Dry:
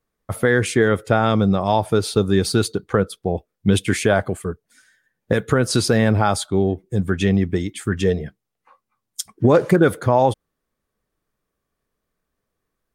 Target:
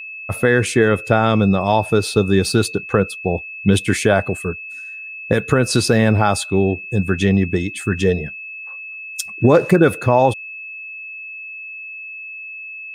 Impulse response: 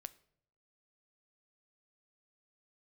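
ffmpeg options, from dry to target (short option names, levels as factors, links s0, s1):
-af "aeval=exprs='val(0)+0.0251*sin(2*PI*2600*n/s)':c=same,volume=1.26"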